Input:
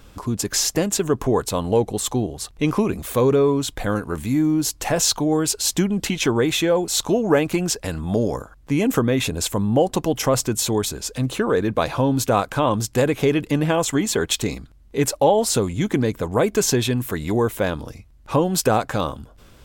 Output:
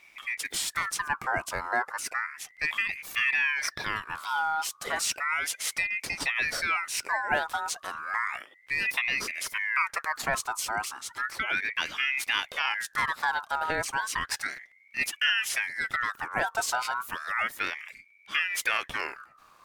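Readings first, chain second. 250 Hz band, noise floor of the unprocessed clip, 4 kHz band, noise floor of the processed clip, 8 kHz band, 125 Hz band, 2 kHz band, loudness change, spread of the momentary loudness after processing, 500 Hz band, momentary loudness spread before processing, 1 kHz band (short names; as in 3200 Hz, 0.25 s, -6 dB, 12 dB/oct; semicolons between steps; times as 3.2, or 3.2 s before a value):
-28.0 dB, -49 dBFS, -6.0 dB, -59 dBFS, -10.5 dB, -27.0 dB, +5.0 dB, -8.0 dB, 7 LU, -21.0 dB, 7 LU, -4.5 dB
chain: spectral gain 3.56–4.67, 1800–4300 Hz +10 dB; ring modulator with a swept carrier 1700 Hz, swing 35%, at 0.33 Hz; gain -7 dB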